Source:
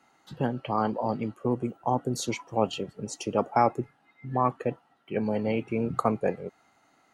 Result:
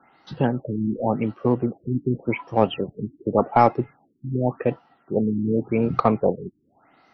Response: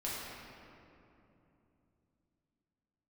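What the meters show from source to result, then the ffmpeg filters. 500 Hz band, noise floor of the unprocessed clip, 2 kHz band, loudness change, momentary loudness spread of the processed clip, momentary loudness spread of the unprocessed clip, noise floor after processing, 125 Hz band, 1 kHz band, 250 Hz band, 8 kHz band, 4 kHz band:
+5.5 dB, -66 dBFS, +4.0 dB, +5.5 dB, 11 LU, 9 LU, -64 dBFS, +7.0 dB, +4.0 dB, +7.0 dB, under -25 dB, 0.0 dB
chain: -filter_complex "[0:a]asplit=2[a][b];[b]aeval=exprs='clip(val(0),-1,0.0562)':c=same,volume=-6dB[c];[a][c]amix=inputs=2:normalize=0,afftfilt=real='re*lt(b*sr/1024,360*pow(6200/360,0.5+0.5*sin(2*PI*0.88*pts/sr)))':imag='im*lt(b*sr/1024,360*pow(6200/360,0.5+0.5*sin(2*PI*0.88*pts/sr)))':win_size=1024:overlap=0.75,volume=3.5dB"

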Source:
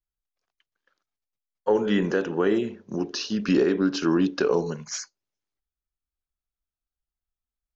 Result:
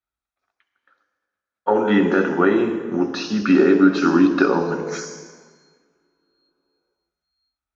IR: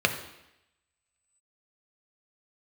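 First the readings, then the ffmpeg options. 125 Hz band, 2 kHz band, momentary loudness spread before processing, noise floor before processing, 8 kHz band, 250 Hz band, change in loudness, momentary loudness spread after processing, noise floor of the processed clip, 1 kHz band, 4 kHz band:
+3.5 dB, +9.0 dB, 10 LU, under -85 dBFS, n/a, +7.5 dB, +6.5 dB, 12 LU, under -85 dBFS, +10.5 dB, +1.0 dB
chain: -filter_complex "[0:a]lowshelf=f=140:g=-12[a];[1:a]atrim=start_sample=2205,asetrate=23373,aresample=44100[b];[a][b]afir=irnorm=-1:irlink=0,volume=-9dB"

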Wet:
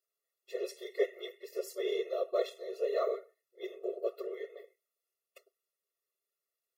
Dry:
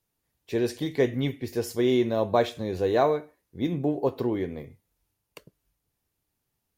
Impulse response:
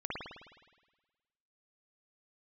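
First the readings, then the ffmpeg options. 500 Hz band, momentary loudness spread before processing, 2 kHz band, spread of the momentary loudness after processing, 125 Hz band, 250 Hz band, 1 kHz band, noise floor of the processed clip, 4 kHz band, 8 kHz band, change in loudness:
-8.0 dB, 8 LU, -10.5 dB, 13 LU, under -40 dB, -20.0 dB, -15.0 dB, under -85 dBFS, -9.5 dB, n/a, -10.0 dB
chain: -af "afftfilt=real='hypot(re,im)*cos(2*PI*random(0))':imag='hypot(re,im)*sin(2*PI*random(1))':win_size=512:overlap=0.75,lowshelf=f=310:t=q:w=1.5:g=8.5,afftfilt=real='re*eq(mod(floor(b*sr/1024/360),2),1)':imag='im*eq(mod(floor(b*sr/1024/360),2),1)':win_size=1024:overlap=0.75"

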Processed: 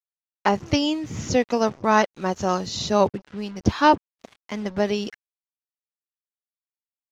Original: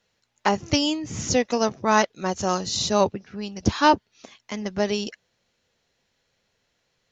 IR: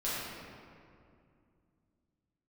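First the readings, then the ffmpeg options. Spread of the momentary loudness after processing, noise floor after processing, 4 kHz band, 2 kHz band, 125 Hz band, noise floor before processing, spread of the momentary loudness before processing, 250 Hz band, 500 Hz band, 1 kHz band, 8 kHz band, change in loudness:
11 LU, under -85 dBFS, -2.5 dB, 0.0 dB, +1.5 dB, -73 dBFS, 12 LU, +1.5 dB, +1.5 dB, +1.0 dB, n/a, +0.5 dB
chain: -af "acrusher=bits=6:mix=0:aa=0.5,aemphasis=mode=reproduction:type=50fm,volume=1dB"

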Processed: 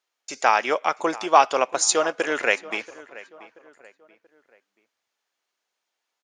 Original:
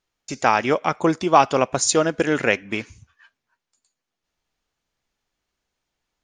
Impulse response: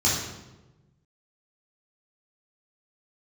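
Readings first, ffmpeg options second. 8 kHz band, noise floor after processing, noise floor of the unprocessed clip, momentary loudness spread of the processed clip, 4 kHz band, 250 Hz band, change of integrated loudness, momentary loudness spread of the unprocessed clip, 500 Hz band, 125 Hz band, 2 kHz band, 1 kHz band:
0.0 dB, -82 dBFS, -84 dBFS, 13 LU, 0.0 dB, -9.5 dB, -1.5 dB, 9 LU, -3.0 dB, -21.0 dB, 0.0 dB, -0.5 dB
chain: -filter_complex "[0:a]highpass=520,asplit=2[a][b];[b]adelay=682,lowpass=f=2.4k:p=1,volume=-18.5dB,asplit=2[c][d];[d]adelay=682,lowpass=f=2.4k:p=1,volume=0.42,asplit=2[e][f];[f]adelay=682,lowpass=f=2.4k:p=1,volume=0.42[g];[a][c][e][g]amix=inputs=4:normalize=0"

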